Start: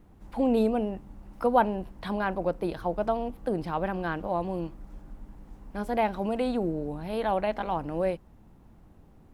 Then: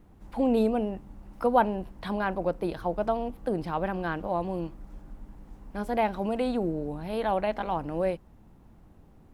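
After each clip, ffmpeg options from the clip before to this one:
ffmpeg -i in.wav -af anull out.wav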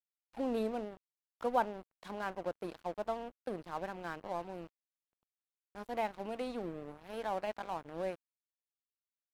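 ffmpeg -i in.wav -af "equalizer=frequency=62:width=0.5:gain=-12,aeval=exprs='sgn(val(0))*max(abs(val(0))-0.01,0)':channel_layout=same,volume=-7.5dB" out.wav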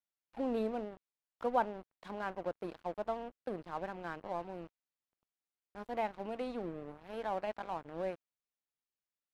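ffmpeg -i in.wav -af "highshelf=frequency=5400:gain=-10.5" out.wav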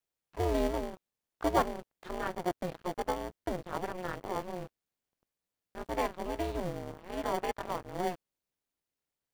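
ffmpeg -i in.wav -filter_complex "[0:a]asplit=2[link_01][link_02];[link_02]acrusher=samples=34:mix=1:aa=0.000001,volume=-7dB[link_03];[link_01][link_03]amix=inputs=2:normalize=0,aeval=exprs='val(0)*sin(2*PI*180*n/s)':channel_layout=same,volume=6dB" out.wav

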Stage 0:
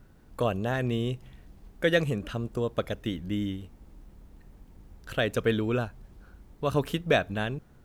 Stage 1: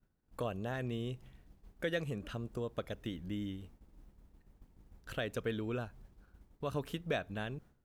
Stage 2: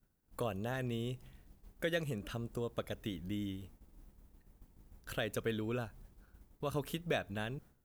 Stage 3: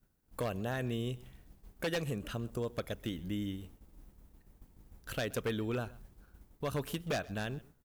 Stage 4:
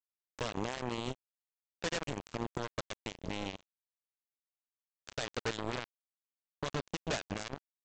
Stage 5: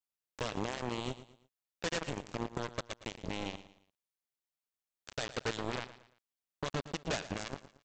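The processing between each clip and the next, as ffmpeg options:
ffmpeg -i in.wav -af "agate=range=-33dB:threshold=-43dB:ratio=3:detection=peak,acompressor=threshold=-41dB:ratio=1.5,volume=-4dB" out.wav
ffmpeg -i in.wav -af "highshelf=frequency=8200:gain=11.5" out.wav
ffmpeg -i in.wav -af "aeval=exprs='0.0355*(abs(mod(val(0)/0.0355+3,4)-2)-1)':channel_layout=same,aecho=1:1:128:0.0891,volume=2.5dB" out.wav
ffmpeg -i in.wav -af "alimiter=level_in=12dB:limit=-24dB:level=0:latency=1:release=203,volume=-12dB,aresample=16000,acrusher=bits=5:mix=0:aa=0.5,aresample=44100,volume=13.5dB" out.wav
ffmpeg -i in.wav -af "aecho=1:1:114|228|342:0.188|0.0678|0.0244" out.wav

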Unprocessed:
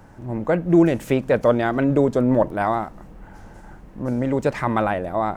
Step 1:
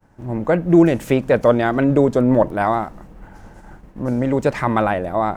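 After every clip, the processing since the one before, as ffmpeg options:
ffmpeg -i in.wav -af "agate=range=-33dB:threshold=-38dB:ratio=3:detection=peak,volume=3dB" out.wav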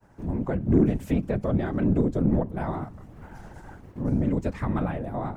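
ffmpeg -i in.wav -filter_complex "[0:a]afftfilt=real='hypot(re,im)*cos(2*PI*random(0))':imag='hypot(re,im)*sin(2*PI*random(1))':win_size=512:overlap=0.75,acrossover=split=260[link_01][link_02];[link_02]acompressor=threshold=-47dB:ratio=2[link_03];[link_01][link_03]amix=inputs=2:normalize=0,aeval=exprs='0.237*(cos(1*acos(clip(val(0)/0.237,-1,1)))-cos(1*PI/2))+0.00473*(cos(8*acos(clip(val(0)/0.237,-1,1)))-cos(8*PI/2))':channel_layout=same,volume=4dB" out.wav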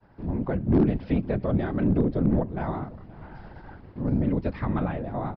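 ffmpeg -i in.wav -af "aresample=11025,volume=13.5dB,asoftclip=hard,volume=-13.5dB,aresample=44100,aecho=1:1:525:0.0841" out.wav

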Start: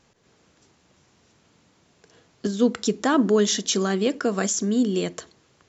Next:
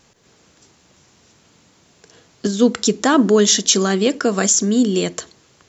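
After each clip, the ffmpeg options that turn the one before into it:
ffmpeg -i in.wav -af "highshelf=frequency=4500:gain=7,volume=5.5dB" out.wav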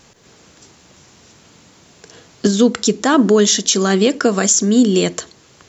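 ffmpeg -i in.wav -af "alimiter=limit=-9.5dB:level=0:latency=1:release=460,volume=6.5dB" out.wav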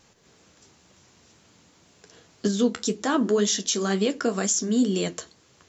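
ffmpeg -i in.wav -af "flanger=delay=9.4:depth=3.9:regen=-51:speed=2:shape=sinusoidal,volume=-6dB" out.wav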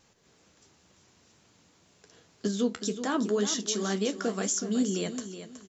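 ffmpeg -i in.wav -af "aecho=1:1:371|742|1113:0.282|0.0761|0.0205,volume=-5.5dB" out.wav

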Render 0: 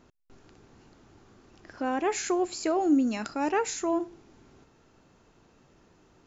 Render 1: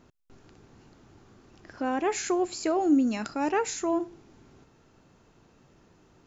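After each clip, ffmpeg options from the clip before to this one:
ffmpeg -i in.wav -af "equalizer=frequency=130:width_type=o:width=1.5:gain=3" out.wav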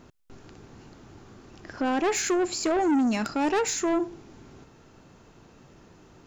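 ffmpeg -i in.wav -af "asoftclip=type=tanh:threshold=-26.5dB,volume=6.5dB" out.wav

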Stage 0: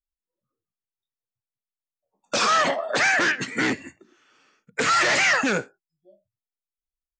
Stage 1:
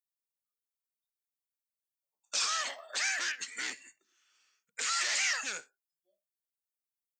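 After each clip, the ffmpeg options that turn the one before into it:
ffmpeg -i in.wav -af "aderivative,volume=-1.5dB" out.wav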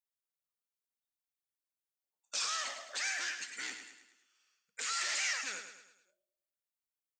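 ffmpeg -i in.wav -af "aecho=1:1:106|212|318|424|530:0.376|0.177|0.083|0.039|0.0183,volume=-4.5dB" out.wav

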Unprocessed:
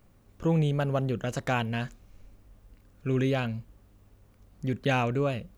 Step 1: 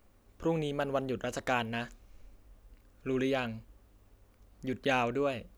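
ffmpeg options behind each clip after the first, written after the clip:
ffmpeg -i in.wav -af "equalizer=frequency=140:width_type=o:width=0.77:gain=-13.5,volume=-1.5dB" out.wav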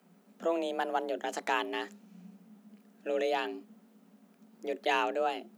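ffmpeg -i in.wav -af "afreqshift=170" out.wav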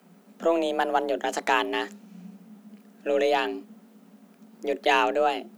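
ffmpeg -i in.wav -af "aeval=exprs='0.158*(cos(1*acos(clip(val(0)/0.158,-1,1)))-cos(1*PI/2))+0.00112*(cos(8*acos(clip(val(0)/0.158,-1,1)))-cos(8*PI/2))':channel_layout=same,volume=7.5dB" out.wav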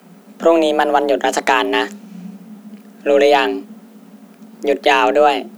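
ffmpeg -i in.wav -af "alimiter=level_in=12.5dB:limit=-1dB:release=50:level=0:latency=1,volume=-1dB" out.wav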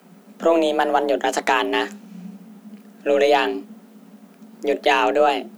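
ffmpeg -i in.wav -af "flanger=delay=2:depth=6.6:regen=-83:speed=0.78:shape=triangular" out.wav

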